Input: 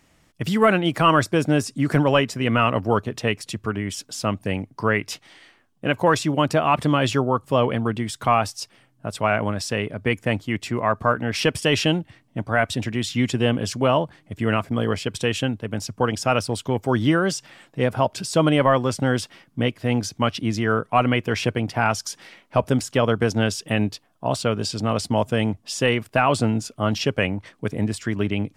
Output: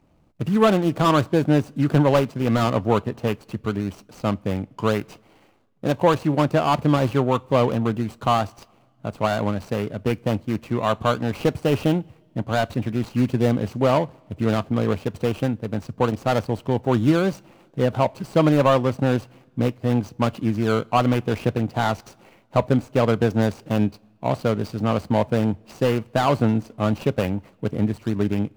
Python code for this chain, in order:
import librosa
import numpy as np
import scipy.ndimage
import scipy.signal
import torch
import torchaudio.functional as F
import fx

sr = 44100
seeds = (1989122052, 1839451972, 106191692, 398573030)

y = scipy.ndimage.median_filter(x, 25, mode='constant')
y = fx.rev_double_slope(y, sr, seeds[0], early_s=0.22, late_s=1.6, knee_db=-18, drr_db=18.5)
y = F.gain(torch.from_numpy(y), 1.5).numpy()